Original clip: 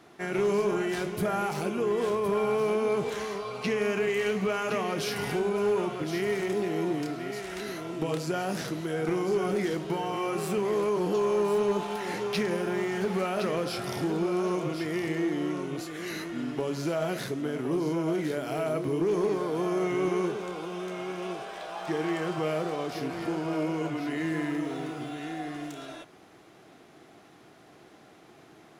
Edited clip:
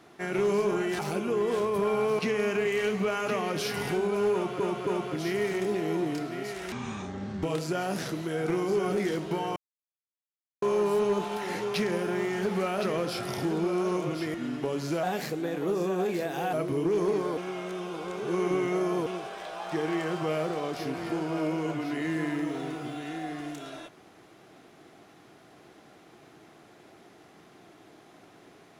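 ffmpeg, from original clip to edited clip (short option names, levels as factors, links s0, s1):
-filter_complex "[0:a]asplit=14[s0][s1][s2][s3][s4][s5][s6][s7][s8][s9][s10][s11][s12][s13];[s0]atrim=end=0.992[s14];[s1]atrim=start=1.488:end=2.692[s15];[s2]atrim=start=3.608:end=6.022[s16];[s3]atrim=start=5.748:end=6.022[s17];[s4]atrim=start=5.748:end=7.604[s18];[s5]atrim=start=7.6:end=8.02,asetpts=PTS-STARTPTS,asetrate=26019,aresample=44100,atrim=end_sample=31393,asetpts=PTS-STARTPTS[s19];[s6]atrim=start=8.016:end=10.15,asetpts=PTS-STARTPTS,afade=t=out:st=2.13:d=0.004:c=hsin[s20];[s7]atrim=start=10.15:end=11.21,asetpts=PTS-STARTPTS,volume=0[s21];[s8]atrim=start=11.21:end=14.932,asetpts=PTS-STARTPTS,afade=t=in:d=0.004:c=hsin[s22];[s9]atrim=start=16.288:end=16.984[s23];[s10]atrim=start=16.98:end=18.69,asetpts=PTS-STARTPTS,asetrate=50274,aresample=44100[s24];[s11]atrim=start=18.686:end=19.532[s25];[s12]atrim=start=19.528:end=21.222,asetpts=PTS-STARTPTS,areverse[s26];[s13]atrim=start=21.218[s27];[s14][s15]acrossfade=d=0.004:c1=hsin:c2=hsin[s28];[s28][s16]acrossfade=d=0.004:c1=hsin:c2=hsin[s29];[s29][s17]acrossfade=d=0.004:c1=hsin:c2=hsin[s30];[s30][s18]acrossfade=d=0.004:c1=hsin:c2=hsin[s31];[s31][s19]acrossfade=d=0.004:c1=hsin:c2=hsin[s32];[s20][s21][s22]concat=n=3:v=0:a=1[s33];[s32][s33]acrossfade=d=0.004:c1=hsin:c2=hsin[s34];[s34][s23]acrossfade=d=0.004:c1=hsin:c2=hsin[s35];[s35][s24]acrossfade=d=0.004:c1=hsin:c2=hsin[s36];[s36][s25]acrossfade=d=0.004:c1=hsin:c2=hsin[s37];[s37][s26]acrossfade=d=0.004:c1=hsin:c2=hsin[s38];[s38][s27]acrossfade=d=0.004:c1=hsin:c2=hsin"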